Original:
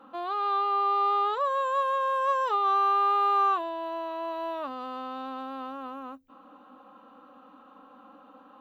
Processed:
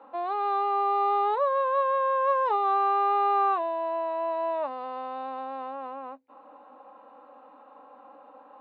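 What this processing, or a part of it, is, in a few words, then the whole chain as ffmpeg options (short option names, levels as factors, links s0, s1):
phone earpiece: -af "highpass=360,equalizer=f=410:t=q:w=4:g=5,equalizer=f=600:t=q:w=4:g=7,equalizer=f=880:t=q:w=4:g=8,equalizer=f=1300:t=q:w=4:g=-6,equalizer=f=2100:t=q:w=4:g=4,equalizer=f=3200:t=q:w=4:g=-10,lowpass=f=3900:w=0.5412,lowpass=f=3900:w=1.3066"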